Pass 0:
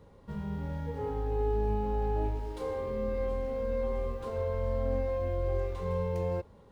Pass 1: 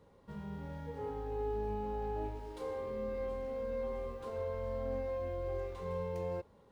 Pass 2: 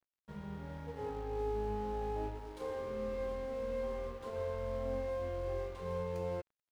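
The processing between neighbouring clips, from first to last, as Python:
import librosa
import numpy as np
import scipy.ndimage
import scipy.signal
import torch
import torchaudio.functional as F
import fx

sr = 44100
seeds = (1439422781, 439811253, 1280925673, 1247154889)

y1 = fx.low_shelf(x, sr, hz=130.0, db=-8.0)
y1 = y1 * 10.0 ** (-4.5 / 20.0)
y2 = np.sign(y1) * np.maximum(np.abs(y1) - 10.0 ** (-54.5 / 20.0), 0.0)
y2 = y2 * 10.0 ** (1.0 / 20.0)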